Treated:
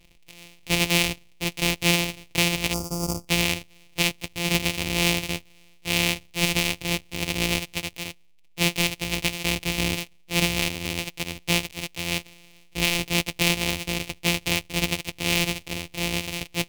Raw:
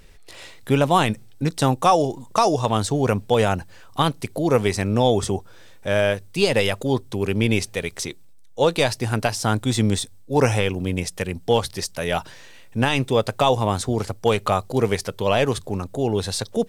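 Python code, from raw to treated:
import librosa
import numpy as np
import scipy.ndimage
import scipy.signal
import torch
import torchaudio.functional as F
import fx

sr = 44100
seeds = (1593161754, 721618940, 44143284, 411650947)

p1 = np.r_[np.sort(x[:len(x) // 256 * 256].reshape(-1, 256), axis=1).ravel(), x[len(x) // 256 * 256:]]
p2 = np.sign(p1) * np.maximum(np.abs(p1) - 10.0 ** (-39.0 / 20.0), 0.0)
p3 = p1 + F.gain(torch.from_numpy(p2), -10.5).numpy()
p4 = fx.spec_box(p3, sr, start_s=2.73, length_s=0.55, low_hz=1400.0, high_hz=4500.0, gain_db=-25)
p5 = fx.high_shelf_res(p4, sr, hz=1900.0, db=8.5, q=3.0)
y = F.gain(torch.from_numpy(p5), -10.0).numpy()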